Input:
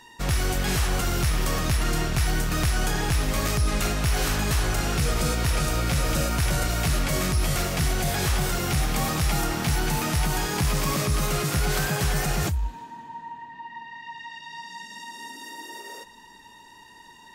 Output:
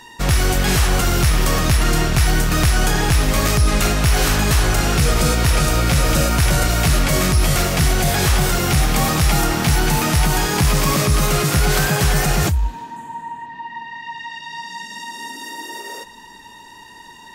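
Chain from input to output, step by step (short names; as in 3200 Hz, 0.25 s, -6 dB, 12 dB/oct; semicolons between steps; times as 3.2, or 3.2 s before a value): 12.96–13.46 resonant high shelf 6500 Hz +7 dB, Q 3; gain +8 dB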